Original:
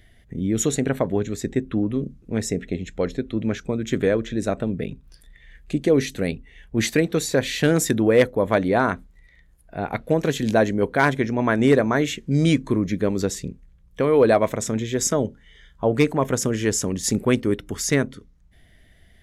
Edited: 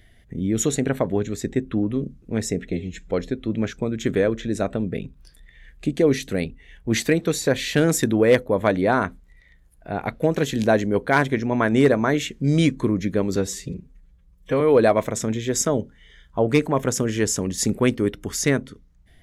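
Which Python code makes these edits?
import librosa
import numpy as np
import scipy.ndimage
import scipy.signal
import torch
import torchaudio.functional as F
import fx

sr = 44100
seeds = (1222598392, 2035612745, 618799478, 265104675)

y = fx.edit(x, sr, fx.stretch_span(start_s=2.72, length_s=0.26, factor=1.5),
    fx.stretch_span(start_s=13.23, length_s=0.83, factor=1.5), tone=tone)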